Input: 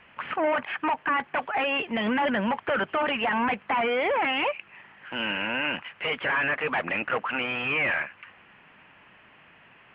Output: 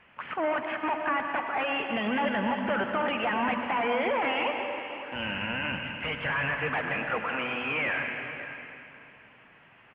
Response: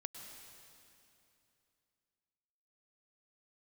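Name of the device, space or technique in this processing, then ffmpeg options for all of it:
swimming-pool hall: -filter_complex "[0:a]bandreject=f=3.9k:w=25,asplit=3[a][b][c];[a]afade=t=out:st=5.14:d=0.02[d];[b]asubboost=boost=7:cutoff=120,afade=t=in:st=5.14:d=0.02,afade=t=out:st=6.58:d=0.02[e];[c]afade=t=in:st=6.58:d=0.02[f];[d][e][f]amix=inputs=3:normalize=0,aecho=1:1:546:0.211[g];[1:a]atrim=start_sample=2205[h];[g][h]afir=irnorm=-1:irlink=0,highshelf=f=4.4k:g=-5,volume=1dB"

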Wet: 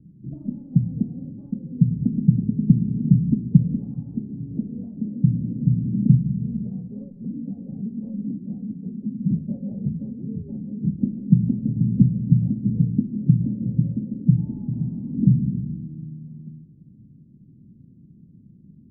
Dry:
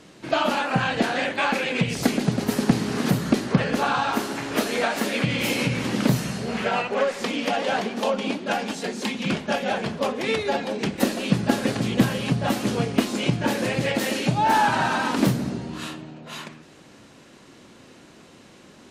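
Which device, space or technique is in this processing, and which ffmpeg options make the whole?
the neighbour's flat through the wall: -filter_complex "[0:a]asettb=1/sr,asplit=3[a][b][c];[a]atrim=end=9.364[d];[b]atrim=start=9.36:end=9.89,asetpts=PTS-STARTPTS,afade=t=in:d=0.004:c=qsin,afade=t=out:st=0.526:d=0.004:c=qsin,equalizer=f=550:t=o:w=0.59:g=10[e];[c]atrim=start=9.886[f];[d][e]acrossfade=d=0.004:c1=hsin:c2=qsin[g];[g][f]acrossfade=d=0.004:c1=qsin:c2=hsin,lowpass=f=210:w=0.5412,lowpass=f=210:w=1.3066,equalizer=f=150:t=o:w=0.97:g=6,volume=3.5dB"

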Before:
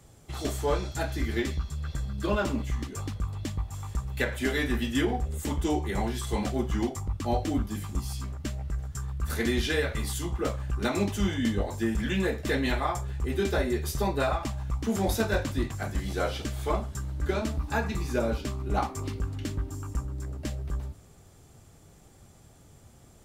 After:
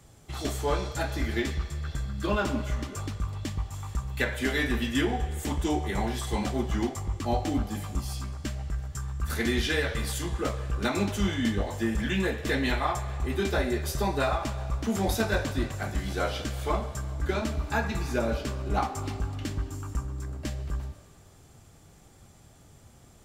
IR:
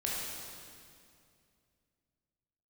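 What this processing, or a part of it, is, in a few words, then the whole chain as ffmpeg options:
filtered reverb send: -filter_complex "[0:a]asplit=2[a][b];[b]highpass=f=440:w=0.5412,highpass=f=440:w=1.3066,lowpass=7.5k[c];[1:a]atrim=start_sample=2205[d];[c][d]afir=irnorm=-1:irlink=0,volume=-13dB[e];[a][e]amix=inputs=2:normalize=0"

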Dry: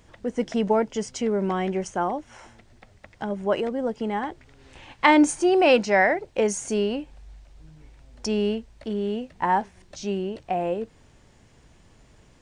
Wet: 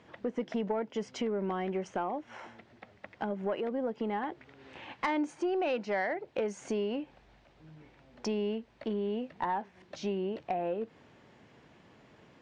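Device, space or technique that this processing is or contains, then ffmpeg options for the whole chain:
AM radio: -af "highpass=170,lowpass=3.2k,acompressor=threshold=-31dB:ratio=4,asoftclip=type=tanh:threshold=-22dB,volume=1dB"

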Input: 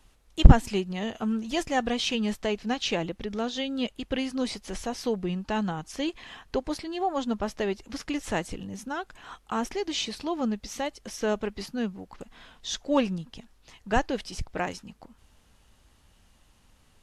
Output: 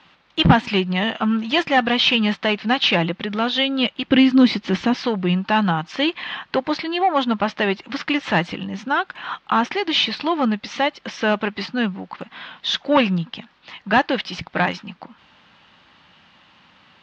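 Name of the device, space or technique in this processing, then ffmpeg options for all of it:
overdrive pedal into a guitar cabinet: -filter_complex "[0:a]asplit=2[a][b];[b]highpass=f=720:p=1,volume=23dB,asoftclip=type=tanh:threshold=-2dB[c];[a][c]amix=inputs=2:normalize=0,lowpass=f=4.4k:p=1,volume=-6dB,highpass=92,equalizer=f=170:t=q:w=4:g=8,equalizer=f=440:t=q:w=4:g=-8,equalizer=f=680:t=q:w=4:g=-4,lowpass=f=4.1k:w=0.5412,lowpass=f=4.1k:w=1.3066,asettb=1/sr,asplit=3[d][e][f];[d]atrim=end=4.074[g];[e]atrim=start=4.07:end=4.95,asetpts=PTS-STARTPTS,afade=t=in:d=0.004:c=qsin,afade=t=out:st=0.876:d=0.004:c=qsin,lowshelf=f=440:t=q:w=1.5:g=7.5[h];[f]atrim=start=4.946[i];[g][h]acrossfade=d=0.004:c1=hsin:c2=qsin[j];[j][i]acrossfade=d=0.004:c1=qsin:c2=hsin"

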